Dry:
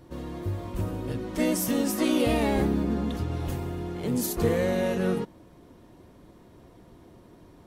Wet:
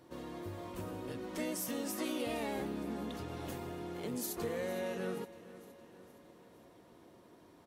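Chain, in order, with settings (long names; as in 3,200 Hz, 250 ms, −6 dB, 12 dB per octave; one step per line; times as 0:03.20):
high-pass filter 340 Hz 6 dB per octave
downward compressor 2 to 1, threshold −35 dBFS, peak gain reduction 7.5 dB
repeating echo 464 ms, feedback 54%, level −17 dB
level −4 dB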